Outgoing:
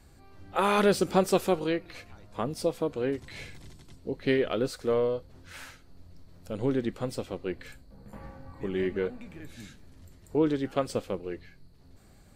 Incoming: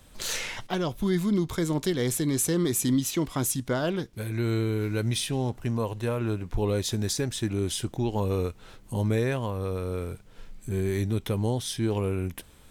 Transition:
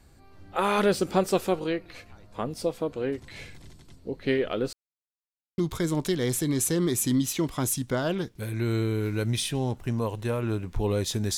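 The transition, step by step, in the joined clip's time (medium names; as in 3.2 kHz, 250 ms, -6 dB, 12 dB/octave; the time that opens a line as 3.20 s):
outgoing
4.73–5.58 s: mute
5.58 s: go over to incoming from 1.36 s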